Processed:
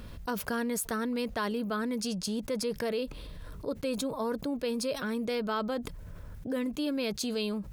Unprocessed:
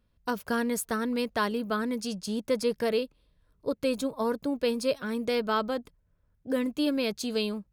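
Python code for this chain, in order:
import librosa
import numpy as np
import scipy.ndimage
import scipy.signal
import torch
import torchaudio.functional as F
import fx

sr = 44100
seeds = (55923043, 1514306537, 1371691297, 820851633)

y = fx.env_flatten(x, sr, amount_pct=70)
y = F.gain(torch.from_numpy(y), -7.0).numpy()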